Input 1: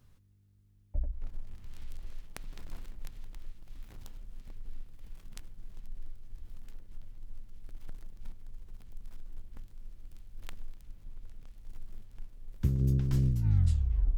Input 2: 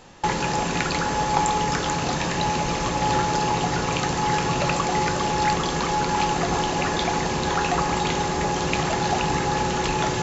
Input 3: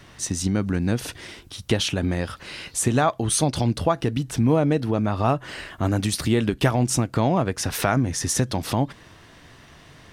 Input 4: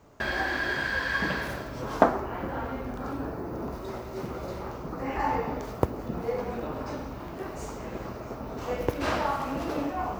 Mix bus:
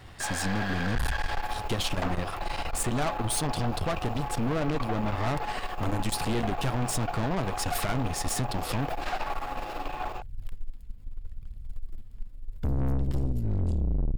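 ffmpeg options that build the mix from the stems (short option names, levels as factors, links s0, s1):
-filter_complex "[0:a]equalizer=f=71:t=o:w=2.6:g=10.5,aphaser=in_gain=1:out_gain=1:delay=4.9:decay=0.47:speed=0.78:type=triangular,volume=1.19[s0];[1:a]asplit=3[s1][s2][s3];[s1]bandpass=f=730:t=q:w=8,volume=1[s4];[s2]bandpass=f=1090:t=q:w=8,volume=0.501[s5];[s3]bandpass=f=2440:t=q:w=8,volume=0.355[s6];[s4][s5][s6]amix=inputs=3:normalize=0,volume=1.19[s7];[2:a]volume=1[s8];[3:a]highpass=f=1100:p=1,volume=1[s9];[s0][s7][s8][s9]amix=inputs=4:normalize=0,bandreject=f=6000:w=6.7,aeval=exprs='(tanh(17.8*val(0)+0.65)-tanh(0.65))/17.8':c=same"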